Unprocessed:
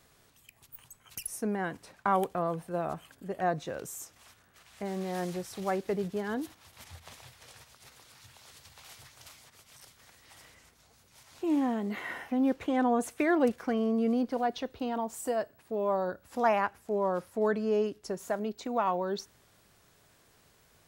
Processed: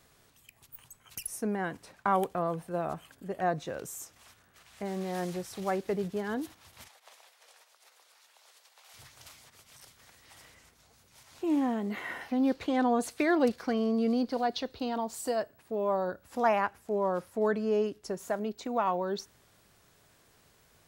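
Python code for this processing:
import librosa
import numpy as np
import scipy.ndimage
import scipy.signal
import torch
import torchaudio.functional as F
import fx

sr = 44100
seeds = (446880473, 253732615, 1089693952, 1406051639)

y = fx.ladder_highpass(x, sr, hz=420.0, resonance_pct=25, at=(6.87, 8.93), fade=0.02)
y = fx.peak_eq(y, sr, hz=4400.0, db=10.5, octaves=0.56, at=(12.21, 15.4))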